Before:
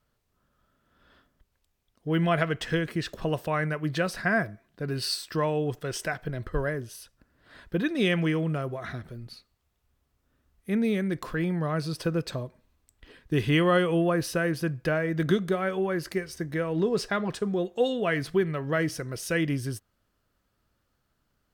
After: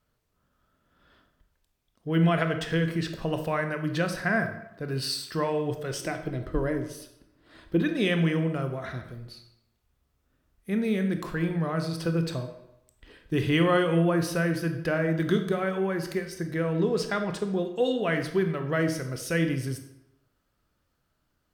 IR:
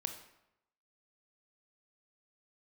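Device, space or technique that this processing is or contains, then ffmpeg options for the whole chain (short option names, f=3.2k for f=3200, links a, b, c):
bathroom: -filter_complex "[1:a]atrim=start_sample=2205[a];[0:a][a]afir=irnorm=-1:irlink=0,asettb=1/sr,asplit=3[b][c][d];[b]atrim=end=6.004[e];[c]atrim=start=6:end=7.82,asetpts=PTS-STARTPTS,afade=t=in:d=0.004:c=qsin,afade=t=out:st=1.816:d=0.004:c=qsin,equalizer=f=315:t=o:w=0.33:g=10,equalizer=f=1.6k:t=o:w=0.33:g=-6,equalizer=f=12.5k:t=o:w=0.33:g=-3[f];[d]atrim=start=7.816[g];[e][f]acrossfade=d=0.004:c1=hsin:c2=qsin[h];[h][g]acrossfade=d=0.004:c1=qsin:c2=hsin"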